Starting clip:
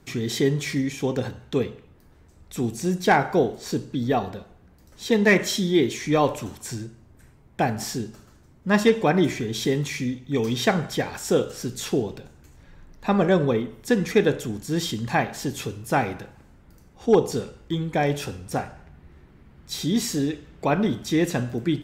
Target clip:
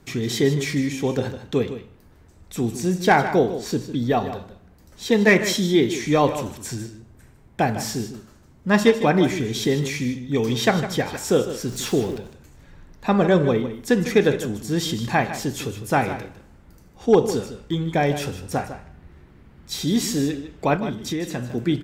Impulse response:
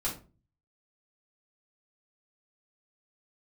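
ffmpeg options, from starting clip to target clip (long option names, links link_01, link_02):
-filter_complex "[0:a]asettb=1/sr,asplit=3[link_01][link_02][link_03];[link_01]atrim=end=11.684[link_04];[link_02]atrim=start=11.68:end=12.17,asetpts=PTS-STARTPTS,afade=type=in:duration=0.004:curve=qsin,afade=type=out:start_time=0.486:duration=0.004:curve=qsin,aeval=exprs='val(0)+0.5*0.0119*sgn(val(0))':channel_layout=same[link_05];[link_03]atrim=start=12.166[link_06];[link_04][link_05]acrossfade=duration=0.004:curve1=hsin:curve2=qsin[link_07];[link_07][link_06]acrossfade=duration=0.004:curve1=qsin:curve2=hsin,asplit=3[link_08][link_09][link_10];[link_08]afade=type=out:start_time=20.76:duration=0.02[link_11];[link_09]acompressor=threshold=-26dB:ratio=6,afade=type=in:start_time=20.76:duration=0.02,afade=type=out:start_time=21.53:duration=0.02[link_12];[link_10]afade=type=in:start_time=21.53:duration=0.02[link_13];[link_11][link_12][link_13]amix=inputs=3:normalize=0,aecho=1:1:154:0.266,volume=2dB"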